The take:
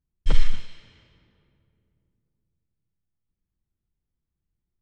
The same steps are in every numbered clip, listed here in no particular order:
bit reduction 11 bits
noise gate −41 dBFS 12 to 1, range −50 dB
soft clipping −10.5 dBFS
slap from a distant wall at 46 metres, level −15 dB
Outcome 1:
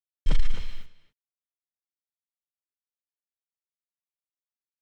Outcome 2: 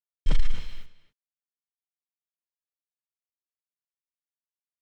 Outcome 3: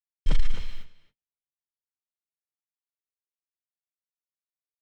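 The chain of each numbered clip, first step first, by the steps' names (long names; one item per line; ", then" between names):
noise gate, then bit reduction, then slap from a distant wall, then soft clipping
noise gate, then soft clipping, then bit reduction, then slap from a distant wall
bit reduction, then noise gate, then slap from a distant wall, then soft clipping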